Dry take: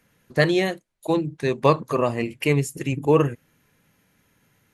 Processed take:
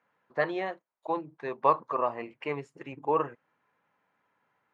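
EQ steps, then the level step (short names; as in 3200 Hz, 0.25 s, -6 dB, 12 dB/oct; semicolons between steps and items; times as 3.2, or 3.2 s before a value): band-pass 980 Hz, Q 1.8; air absorption 88 m; 0.0 dB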